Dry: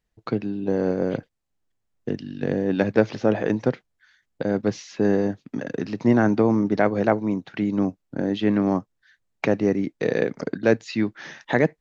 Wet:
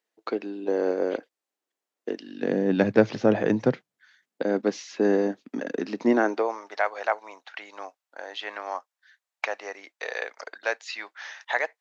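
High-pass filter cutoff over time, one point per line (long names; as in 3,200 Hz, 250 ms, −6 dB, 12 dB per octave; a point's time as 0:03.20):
high-pass filter 24 dB per octave
0:02.26 320 Hz
0:02.84 110 Hz
0:03.63 110 Hz
0:04.45 240 Hz
0:06.08 240 Hz
0:06.62 710 Hz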